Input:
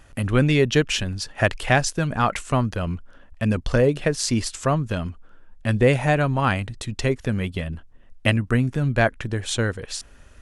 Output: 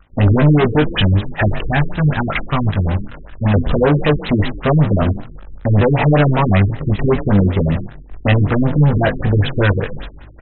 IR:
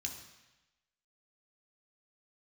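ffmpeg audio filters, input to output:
-filter_complex "[0:a]aeval=exprs='val(0)+0.5*0.119*sgn(val(0))':c=same,asettb=1/sr,asplit=3[a][b][c];[a]atrim=end=1.664[d];[b]atrim=start=1.66:end=3.54,asetpts=PTS-STARTPTS,afade=t=in:d=0.004:c=qsin,afade=t=out:st=1.876:d=0.004:c=qsin,equalizer=f=420:w=0.96:g=-13[e];[c]atrim=start=3.536[f];[d][e]acrossfade=d=0.004:c1=hsin:c2=qsin[g];[g][f]acrossfade=d=0.004:c1=qsin:c2=hsin,agate=range=-33dB:threshold=-20dB:ratio=3:detection=peak,asplit=2[h][i];[i]acompressor=threshold=-26dB:ratio=6,volume=-1.5dB[j];[h][j]amix=inputs=2:normalize=0,asoftclip=type=hard:threshold=-17dB,asplit=4[k][l][m][n];[l]adelay=108,afreqshift=32,volume=-17.5dB[o];[m]adelay=216,afreqshift=64,volume=-28dB[p];[n]adelay=324,afreqshift=96,volume=-38.4dB[q];[k][o][p][q]amix=inputs=4:normalize=0,aeval=exprs='0.237*(cos(1*acos(clip(val(0)/0.237,-1,1)))-cos(1*PI/2))+0.0237*(cos(3*acos(clip(val(0)/0.237,-1,1)))-cos(3*PI/2))+0.0335*(cos(7*acos(clip(val(0)/0.237,-1,1)))-cos(7*PI/2))':c=same,asplit=2[r][s];[s]adelay=20,volume=-4dB[t];[r][t]amix=inputs=2:normalize=0,afftfilt=real='re*lt(b*sr/1024,410*pow(4100/410,0.5+0.5*sin(2*PI*5.2*pts/sr)))':imag='im*lt(b*sr/1024,410*pow(4100/410,0.5+0.5*sin(2*PI*5.2*pts/sr)))':win_size=1024:overlap=0.75,volume=4.5dB"

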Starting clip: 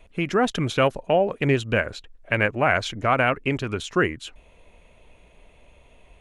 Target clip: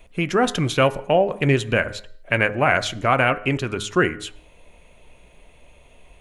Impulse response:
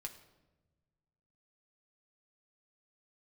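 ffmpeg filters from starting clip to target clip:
-filter_complex "[0:a]highshelf=f=7.8k:g=8,bandreject=f=103.6:t=h:w=4,bandreject=f=207.2:t=h:w=4,bandreject=f=310.8:t=h:w=4,bandreject=f=414.4:t=h:w=4,bandreject=f=518:t=h:w=4,bandreject=f=621.6:t=h:w=4,bandreject=f=725.2:t=h:w=4,bandreject=f=828.8:t=h:w=4,bandreject=f=932.4:t=h:w=4,bandreject=f=1.036k:t=h:w=4,bandreject=f=1.1396k:t=h:w=4,bandreject=f=1.2432k:t=h:w=4,bandreject=f=1.3468k:t=h:w=4,bandreject=f=1.4504k:t=h:w=4,bandreject=f=1.554k:t=h:w=4,bandreject=f=1.6576k:t=h:w=4,bandreject=f=1.7612k:t=h:w=4,bandreject=f=1.8648k:t=h:w=4,bandreject=f=1.9684k:t=h:w=4,asplit=2[a][b];[1:a]atrim=start_sample=2205,afade=t=out:st=0.29:d=0.01,atrim=end_sample=13230[c];[b][c]afir=irnorm=-1:irlink=0,volume=-5dB[d];[a][d]amix=inputs=2:normalize=0"

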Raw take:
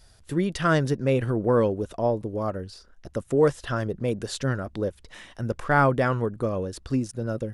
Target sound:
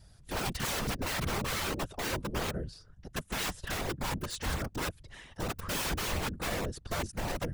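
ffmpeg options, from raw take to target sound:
-af "aeval=exprs='(mod(14.1*val(0)+1,2)-1)/14.1':c=same,afftfilt=real='hypot(re,im)*cos(2*PI*random(0))':imag='hypot(re,im)*sin(2*PI*random(1))':win_size=512:overlap=0.75,lowshelf=f=160:g=7.5"

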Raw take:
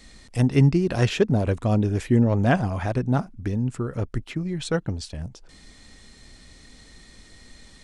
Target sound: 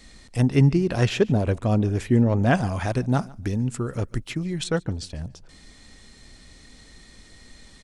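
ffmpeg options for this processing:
-filter_complex "[0:a]asettb=1/sr,asplit=3[a][b][c];[a]atrim=end=2.534[d];[b]atrim=start=2.53:end=4.64,asetpts=PTS-STARTPTS,afade=t=in:d=0.004:c=qsin,afade=t=out:st=2.106:d=0.004:c=qsin,highshelf=f=3.5k:g=9.5[e];[c]atrim=start=4.636[f];[d][e]acrossfade=d=0.004:c1=hsin:c2=qsin[g];[g][f]acrossfade=d=0.004:c1=qsin:c2=hsin,aecho=1:1:145|290:0.0708|0.0127"

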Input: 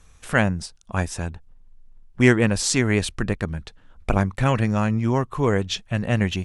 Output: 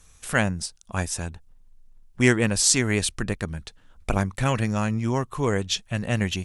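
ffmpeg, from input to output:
-af "highshelf=f=4.5k:g=11.5,volume=-3.5dB"

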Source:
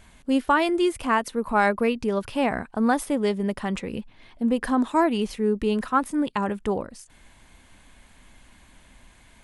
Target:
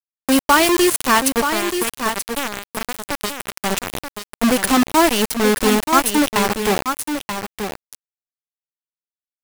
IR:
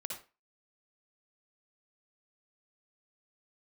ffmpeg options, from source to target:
-filter_complex "[0:a]asettb=1/sr,asplit=3[a][b][c];[a]atrim=end=1.494[d];[b]atrim=start=1.49:end=3.61,asetpts=PTS-STARTPTS,afade=t=in:d=0.004:c=qsin,afade=t=out:st=2.116:d=0.004:c=qsin,acrossover=split=140|300|3400|7500[e][f][g][h][i];[e]acompressor=threshold=-44dB:ratio=4[j];[f]acompressor=threshold=-32dB:ratio=4[k];[g]acompressor=threshold=-34dB:ratio=4[l];[h]acompressor=threshold=-53dB:ratio=4[m];[i]acompressor=threshold=-54dB:ratio=4[n];[j][k][l][m][n]amix=inputs=5:normalize=0[o];[c]atrim=start=3.606[p];[d][o]acrossfade=d=0.004:c1=hsin:c2=qsin[q];[q][p]acrossfade=d=0.004:c1=qsin:c2=hsin,aemphasis=mode=production:type=75fm,acrusher=bits=3:mix=0:aa=0.000001,asplit=2[r][s];[s]aecho=0:1:931:0.422[t];[r][t]amix=inputs=2:normalize=0,volume=6dB"

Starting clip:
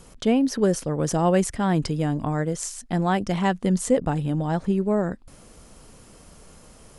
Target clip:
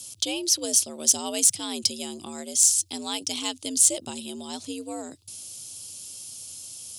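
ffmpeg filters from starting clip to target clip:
-af "aexciter=amount=10:drive=9.2:freq=2.7k,afreqshift=78,volume=-13dB"

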